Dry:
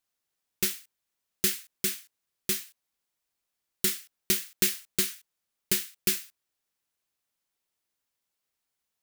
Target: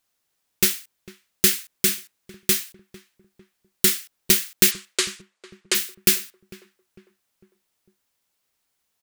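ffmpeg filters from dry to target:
-filter_complex "[0:a]asplit=3[s0][s1][s2];[s0]afade=t=out:st=4.7:d=0.02[s3];[s1]highpass=f=370:w=0.5412,highpass=f=370:w=1.3066,equalizer=f=540:t=q:w=4:g=5,equalizer=f=1100:t=q:w=4:g=6,equalizer=f=5800:t=q:w=4:g=-3,lowpass=f=8300:w=0.5412,lowpass=f=8300:w=1.3066,afade=t=in:st=4.7:d=0.02,afade=t=out:st=5.74:d=0.02[s4];[s2]afade=t=in:st=5.74:d=0.02[s5];[s3][s4][s5]amix=inputs=3:normalize=0,asplit=2[s6][s7];[s7]adelay=451,lowpass=f=1300:p=1,volume=0.141,asplit=2[s8][s9];[s9]adelay=451,lowpass=f=1300:p=1,volume=0.47,asplit=2[s10][s11];[s11]adelay=451,lowpass=f=1300:p=1,volume=0.47,asplit=2[s12][s13];[s13]adelay=451,lowpass=f=1300:p=1,volume=0.47[s14];[s6][s8][s10][s12][s14]amix=inputs=5:normalize=0,volume=2.66"

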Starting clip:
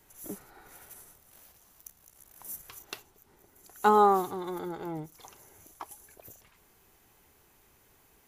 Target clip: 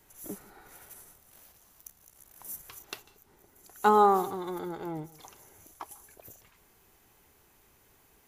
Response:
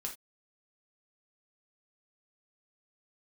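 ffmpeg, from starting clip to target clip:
-filter_complex "[0:a]asplit=2[s0][s1];[1:a]atrim=start_sample=2205,adelay=146[s2];[s1][s2]afir=irnorm=-1:irlink=0,volume=0.112[s3];[s0][s3]amix=inputs=2:normalize=0"

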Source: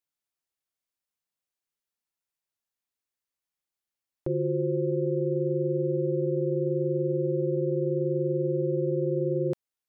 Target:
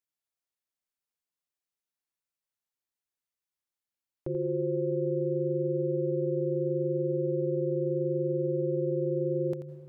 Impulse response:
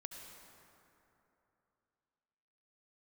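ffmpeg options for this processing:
-filter_complex "[0:a]asplit=2[s0][s1];[1:a]atrim=start_sample=2205,adelay=86[s2];[s1][s2]afir=irnorm=-1:irlink=0,volume=0.631[s3];[s0][s3]amix=inputs=2:normalize=0,volume=0.596"

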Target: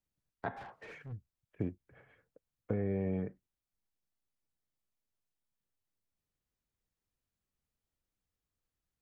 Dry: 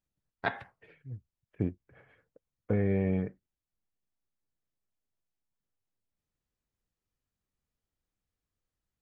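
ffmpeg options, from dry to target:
-filter_complex "[0:a]acrossover=split=240|1400[s0][s1][s2];[s0]acompressor=threshold=0.0224:ratio=4[s3];[s1]acompressor=threshold=0.0251:ratio=4[s4];[s2]acompressor=threshold=0.00126:ratio=4[s5];[s3][s4][s5]amix=inputs=3:normalize=0,asplit=3[s6][s7][s8];[s6]afade=t=out:st=0.56:d=0.02[s9];[s7]asplit=2[s10][s11];[s11]highpass=f=720:p=1,volume=31.6,asoftclip=type=tanh:threshold=0.0133[s12];[s10][s12]amix=inputs=2:normalize=0,lowpass=f=1700:p=1,volume=0.501,afade=t=in:st=0.56:d=0.02,afade=t=out:st=1.11:d=0.02[s13];[s8]afade=t=in:st=1.11:d=0.02[s14];[s9][s13][s14]amix=inputs=3:normalize=0,volume=0.794"

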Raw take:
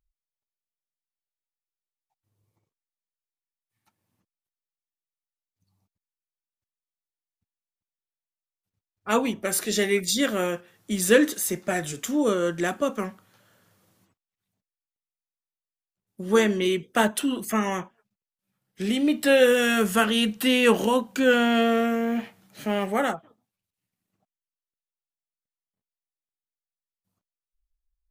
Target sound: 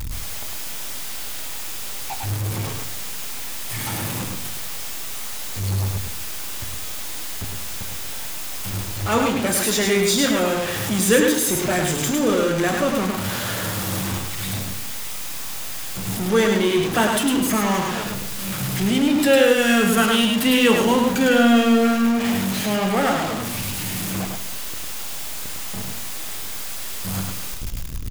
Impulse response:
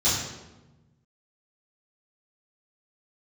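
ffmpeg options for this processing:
-filter_complex "[0:a]aeval=exprs='val(0)+0.5*0.0841*sgn(val(0))':c=same,aecho=1:1:105:0.631,asplit=2[s0][s1];[1:a]atrim=start_sample=2205,afade=t=out:st=0.4:d=0.01,atrim=end_sample=18081[s2];[s1][s2]afir=irnorm=-1:irlink=0,volume=0.0668[s3];[s0][s3]amix=inputs=2:normalize=0"

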